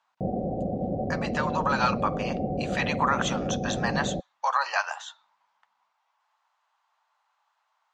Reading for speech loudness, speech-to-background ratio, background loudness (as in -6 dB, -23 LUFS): -29.0 LUFS, 1.5 dB, -30.5 LUFS